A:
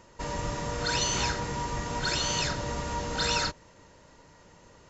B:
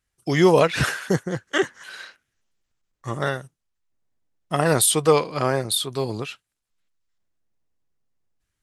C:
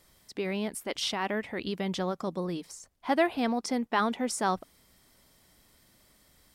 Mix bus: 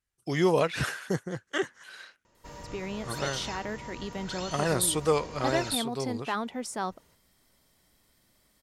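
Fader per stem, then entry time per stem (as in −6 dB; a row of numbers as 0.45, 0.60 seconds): −11.0, −8.0, −4.5 decibels; 2.25, 0.00, 2.35 seconds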